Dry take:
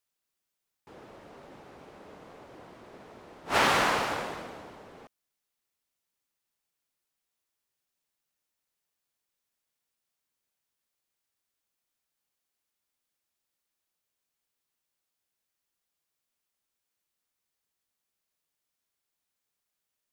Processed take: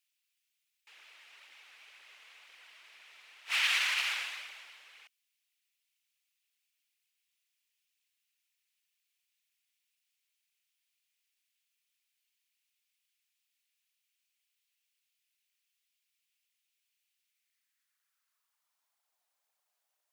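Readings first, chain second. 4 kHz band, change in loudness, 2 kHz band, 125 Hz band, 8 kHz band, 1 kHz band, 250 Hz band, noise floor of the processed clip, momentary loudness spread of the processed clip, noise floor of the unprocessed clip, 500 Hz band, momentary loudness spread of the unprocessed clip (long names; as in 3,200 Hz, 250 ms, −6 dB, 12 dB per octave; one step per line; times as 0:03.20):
+1.5 dB, −3.0 dB, −1.5 dB, below −40 dB, −2.5 dB, −16.5 dB, below −35 dB, −84 dBFS, 16 LU, −85 dBFS, −28.0 dB, 20 LU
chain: brickwall limiter −20 dBFS, peak gain reduction 8 dB
phase shifter 2 Hz, delay 4.8 ms, feedback 39%
high-pass filter sweep 2,500 Hz → 700 Hz, 0:17.27–0:19.16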